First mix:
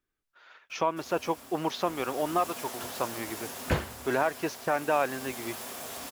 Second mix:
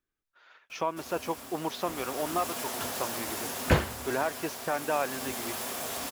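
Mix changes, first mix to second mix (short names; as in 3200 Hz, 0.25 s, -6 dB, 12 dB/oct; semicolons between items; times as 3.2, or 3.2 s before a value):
speech -3.0 dB; background +4.5 dB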